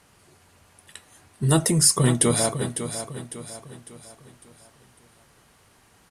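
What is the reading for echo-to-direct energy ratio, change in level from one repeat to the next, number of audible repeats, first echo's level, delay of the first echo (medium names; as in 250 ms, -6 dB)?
-9.0 dB, -7.5 dB, 4, -10.0 dB, 552 ms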